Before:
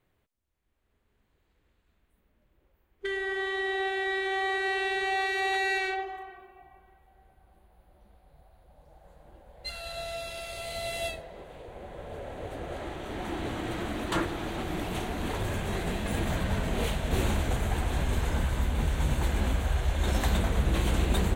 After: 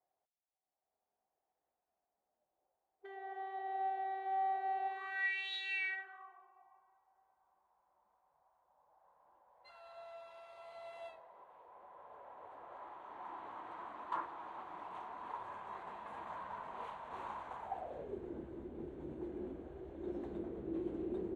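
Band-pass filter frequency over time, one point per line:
band-pass filter, Q 6.3
4.84 s 740 Hz
5.54 s 3.8 kHz
6.33 s 1 kHz
17.58 s 1 kHz
18.21 s 350 Hz

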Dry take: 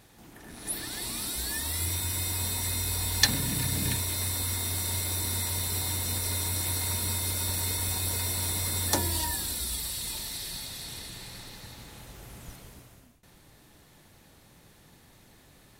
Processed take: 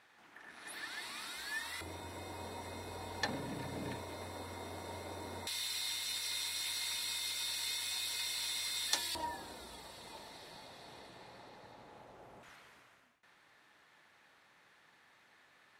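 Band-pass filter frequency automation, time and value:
band-pass filter, Q 1.2
1.6 kHz
from 1.81 s 600 Hz
from 5.47 s 3.2 kHz
from 9.15 s 690 Hz
from 12.43 s 1.6 kHz

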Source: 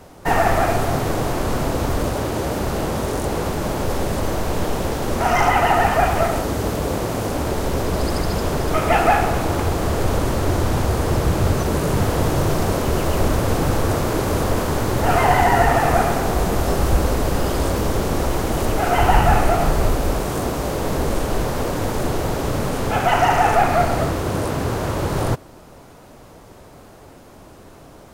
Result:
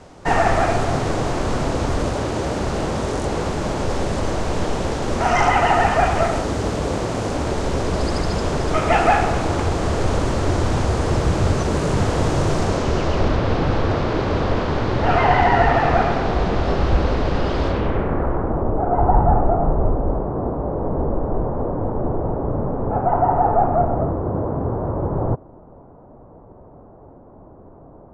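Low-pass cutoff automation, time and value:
low-pass 24 dB/octave
12.58 s 8.1 kHz
13.40 s 4.5 kHz
17.66 s 4.5 kHz
18.15 s 1.8 kHz
18.74 s 1 kHz

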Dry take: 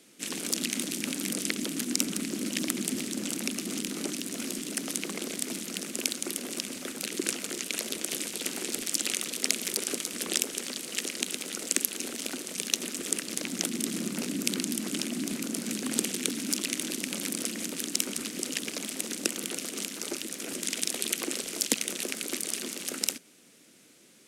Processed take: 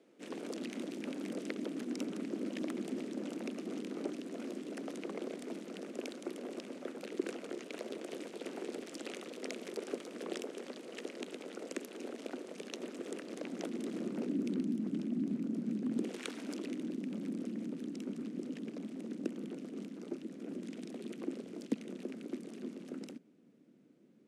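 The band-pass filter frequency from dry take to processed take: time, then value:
band-pass filter, Q 1.1
13.99 s 510 Hz
14.75 s 200 Hz
15.97 s 200 Hz
16.23 s 1.1 kHz
16.87 s 220 Hz

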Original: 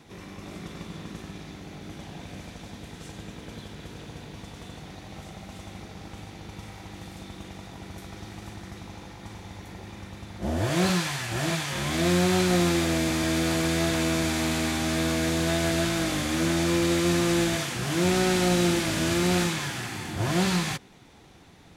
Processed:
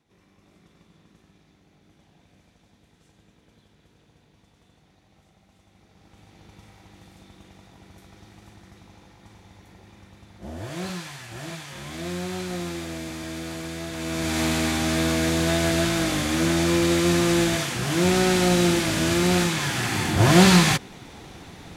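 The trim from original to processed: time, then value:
5.68 s -18 dB
6.41 s -8.5 dB
13.90 s -8.5 dB
14.40 s +3 dB
19.49 s +3 dB
19.99 s +10 dB

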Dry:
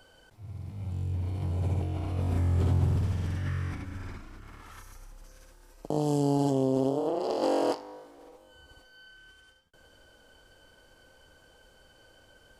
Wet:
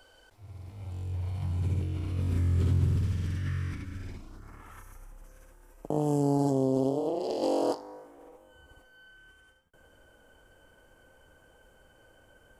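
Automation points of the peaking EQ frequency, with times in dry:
peaking EQ -14.5 dB 0.86 oct
1.04 s 160 Hz
1.72 s 740 Hz
3.91 s 740 Hz
4.62 s 4.4 kHz
6.02 s 4.4 kHz
7.34 s 1.2 kHz
8.12 s 4.4 kHz

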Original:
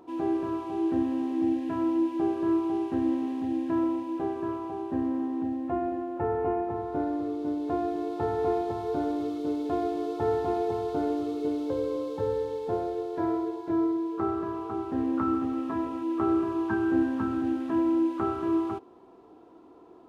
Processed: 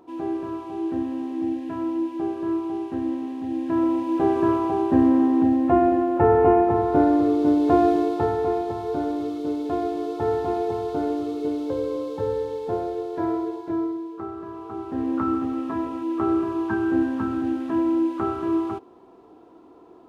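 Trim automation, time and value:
3.39 s 0 dB
4.38 s +11.5 dB
7.91 s +11.5 dB
8.46 s +3 dB
13.55 s +3 dB
14.30 s -5.5 dB
15.12 s +3 dB

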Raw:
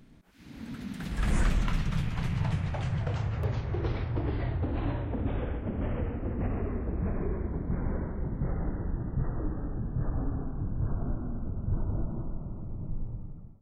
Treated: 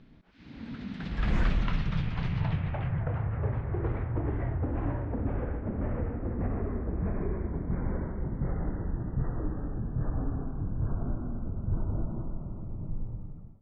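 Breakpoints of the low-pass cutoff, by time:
low-pass 24 dB/octave
2.37 s 4.6 kHz
3.04 s 2 kHz
6.89 s 2 kHz
7.57 s 3.4 kHz

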